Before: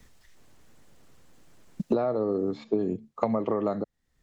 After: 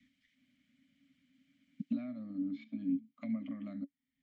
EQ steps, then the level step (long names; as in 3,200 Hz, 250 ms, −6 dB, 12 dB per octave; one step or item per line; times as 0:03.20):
formant filter i
Chebyshev band-stop filter 280–560 Hz, order 4
+4.0 dB